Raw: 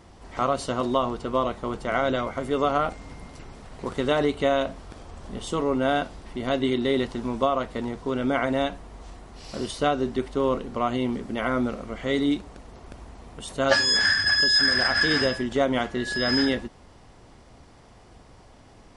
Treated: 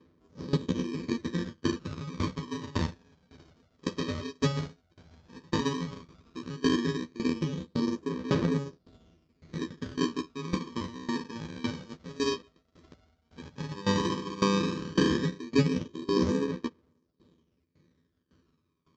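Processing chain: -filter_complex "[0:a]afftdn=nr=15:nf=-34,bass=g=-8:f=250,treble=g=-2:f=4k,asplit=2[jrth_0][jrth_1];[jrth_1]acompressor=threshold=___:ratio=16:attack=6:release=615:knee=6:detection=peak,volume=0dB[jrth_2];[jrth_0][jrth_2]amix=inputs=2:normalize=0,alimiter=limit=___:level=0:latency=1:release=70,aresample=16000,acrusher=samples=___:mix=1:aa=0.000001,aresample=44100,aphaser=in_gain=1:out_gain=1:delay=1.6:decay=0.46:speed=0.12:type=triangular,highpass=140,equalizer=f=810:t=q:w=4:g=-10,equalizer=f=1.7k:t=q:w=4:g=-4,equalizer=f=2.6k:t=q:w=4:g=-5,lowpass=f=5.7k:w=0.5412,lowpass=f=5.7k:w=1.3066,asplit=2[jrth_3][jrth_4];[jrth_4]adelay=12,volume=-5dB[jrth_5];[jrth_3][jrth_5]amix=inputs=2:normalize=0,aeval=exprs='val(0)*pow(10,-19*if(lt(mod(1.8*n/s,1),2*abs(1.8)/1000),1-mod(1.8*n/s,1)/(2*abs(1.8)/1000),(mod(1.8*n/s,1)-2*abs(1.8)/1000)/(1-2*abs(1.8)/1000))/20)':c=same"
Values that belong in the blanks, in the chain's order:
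-30dB, -12dB, 23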